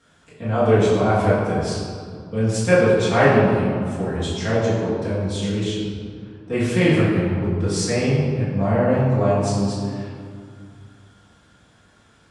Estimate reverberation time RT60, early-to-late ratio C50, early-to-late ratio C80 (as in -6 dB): 2.2 s, -0.5 dB, 1.0 dB